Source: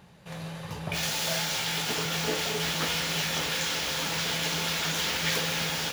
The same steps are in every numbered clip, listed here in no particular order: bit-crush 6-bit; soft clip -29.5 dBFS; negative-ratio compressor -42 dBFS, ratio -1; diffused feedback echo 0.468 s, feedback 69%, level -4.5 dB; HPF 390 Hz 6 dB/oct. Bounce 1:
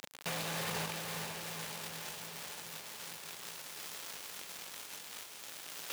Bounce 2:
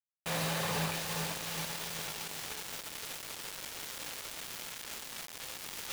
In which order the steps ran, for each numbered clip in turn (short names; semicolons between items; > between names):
negative-ratio compressor > bit-crush > HPF > soft clip > diffused feedback echo; HPF > negative-ratio compressor > soft clip > diffused feedback echo > bit-crush